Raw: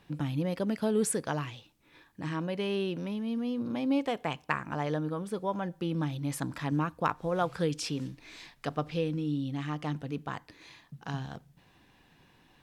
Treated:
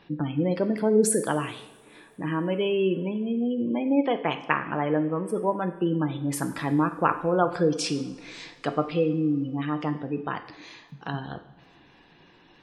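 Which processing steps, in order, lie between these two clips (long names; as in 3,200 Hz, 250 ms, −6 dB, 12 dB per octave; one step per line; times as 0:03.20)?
drawn EQ curve 120 Hz 0 dB, 380 Hz +9 dB, 570 Hz +6 dB
gate on every frequency bin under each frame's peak −25 dB strong
coupled-rooms reverb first 0.69 s, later 3.3 s, from −21 dB, DRR 7.5 dB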